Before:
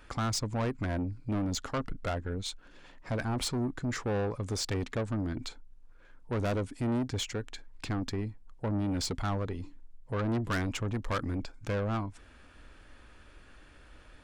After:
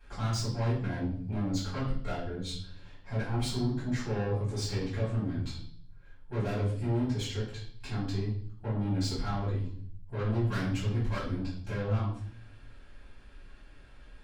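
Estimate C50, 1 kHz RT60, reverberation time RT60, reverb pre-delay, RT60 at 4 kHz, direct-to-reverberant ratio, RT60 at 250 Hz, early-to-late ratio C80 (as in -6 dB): 4.5 dB, 0.50 s, 0.55 s, 3 ms, 0.60 s, -12.0 dB, 0.95 s, 8.5 dB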